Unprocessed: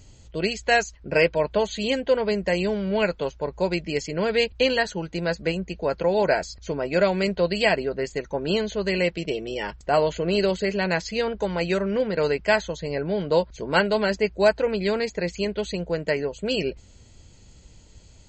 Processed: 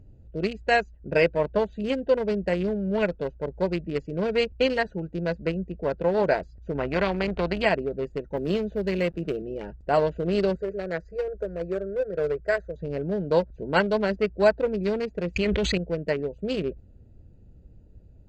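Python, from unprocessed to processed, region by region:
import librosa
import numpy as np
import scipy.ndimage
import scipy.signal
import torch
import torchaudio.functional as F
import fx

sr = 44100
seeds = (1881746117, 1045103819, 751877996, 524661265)

y = fx.chain(x, sr, fx.lowpass(hz=2000.0, slope=12),
    fx.spectral_comp(ratio=2.0), at=(6.75, 7.66))
y = fx.chain(y, sr, fx.quant_dither(seeds[0], bits=8, dither='none'),
    fx.band_squash(depth_pct=40), at=(8.37, 9.42))
y = fx.chain(y, sr, fx.peak_eq(hz=2800.0, db=-12.0, octaves=0.28),
    fx.fixed_phaser(hz=880.0, stages=6), at=(10.55, 12.76))
y = fx.chain(y, sr, fx.peak_eq(hz=2100.0, db=9.5, octaves=0.98),
    fx.env_flatten(amount_pct=100), at=(15.36, 15.78))
y = fx.wiener(y, sr, points=41)
y = fx.high_shelf(y, sr, hz=3600.0, db=-8.0)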